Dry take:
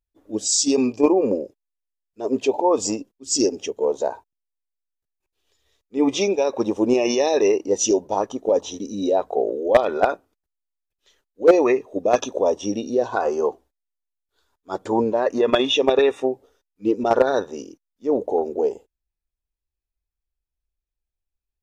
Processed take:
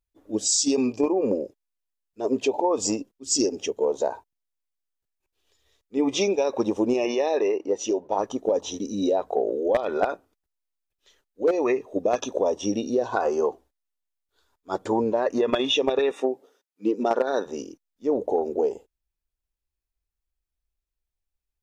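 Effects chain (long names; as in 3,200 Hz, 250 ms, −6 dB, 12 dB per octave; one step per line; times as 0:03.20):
downward compressor 12 to 1, threshold −18 dBFS, peak gain reduction 11 dB
0:07.05–0:08.19: bass and treble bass −9 dB, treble −13 dB
0:16.11–0:17.46: high-pass filter 190 Hz 24 dB per octave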